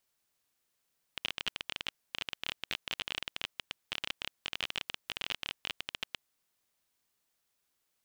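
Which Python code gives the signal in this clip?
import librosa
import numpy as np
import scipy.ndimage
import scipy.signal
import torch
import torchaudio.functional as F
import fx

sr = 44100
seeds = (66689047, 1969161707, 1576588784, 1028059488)

y = fx.geiger_clicks(sr, seeds[0], length_s=5.08, per_s=22.0, level_db=-17.0)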